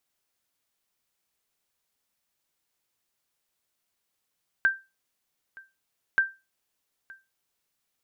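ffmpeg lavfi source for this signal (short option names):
-f lavfi -i "aevalsrc='0.2*(sin(2*PI*1570*mod(t,1.53))*exp(-6.91*mod(t,1.53)/0.25)+0.0631*sin(2*PI*1570*max(mod(t,1.53)-0.92,0))*exp(-6.91*max(mod(t,1.53)-0.92,0)/0.25))':d=3.06:s=44100"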